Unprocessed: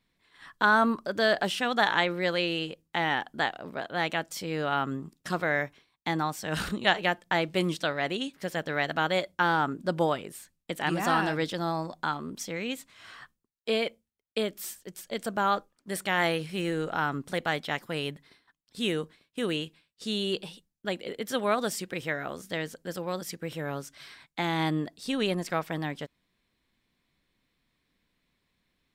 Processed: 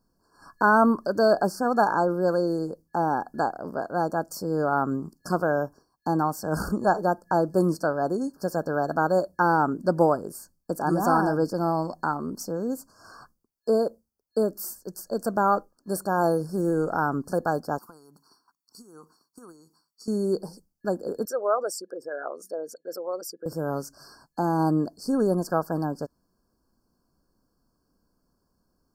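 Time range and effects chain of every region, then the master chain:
17.78–20.08 s: high-pass 920 Hz 6 dB/octave + comb 0.9 ms, depth 67% + compression 8:1, threshold -47 dBFS
21.25–23.46 s: resonances exaggerated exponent 2 + high-pass 600 Hz
whole clip: dynamic bell 4.9 kHz, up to -5 dB, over -44 dBFS, Q 0.86; FFT band-reject 1.7–4.3 kHz; graphic EQ 125/2000/8000 Hz -4/-11/-4 dB; trim +7 dB

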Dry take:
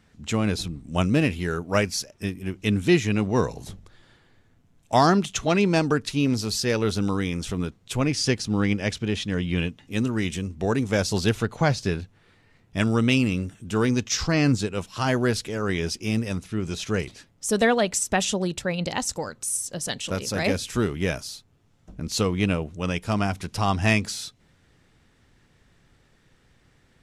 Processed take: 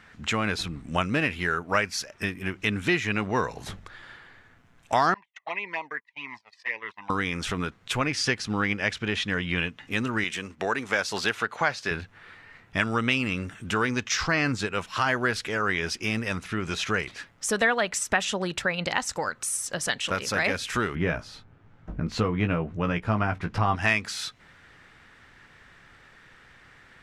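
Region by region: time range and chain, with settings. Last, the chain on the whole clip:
5.14–7.10 s: gate -26 dBFS, range -29 dB + two resonant band-passes 1.4 kHz, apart 1 oct + touch-sensitive flanger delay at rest 2 ms, full sweep at -31.5 dBFS
10.24–11.91 s: high-pass 390 Hz 6 dB/octave + expander -47 dBFS
20.95–23.76 s: low-pass 1.3 kHz 6 dB/octave + bass shelf 360 Hz +7.5 dB + doubling 18 ms -7.5 dB
whole clip: peaking EQ 1.6 kHz +15 dB 2.3 oct; compression 2:1, threshold -29 dBFS

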